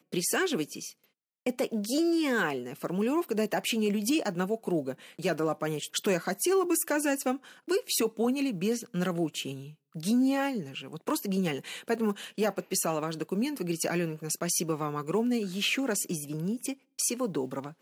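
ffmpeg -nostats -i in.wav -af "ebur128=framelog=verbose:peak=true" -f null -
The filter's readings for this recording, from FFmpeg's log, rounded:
Integrated loudness:
  I:         -30.0 LUFS
  Threshold: -40.1 LUFS
Loudness range:
  LRA:         2.1 LU
  Threshold: -50.0 LUFS
  LRA low:   -31.0 LUFS
  LRA high:  -28.8 LUFS
True peak:
  Peak:      -15.1 dBFS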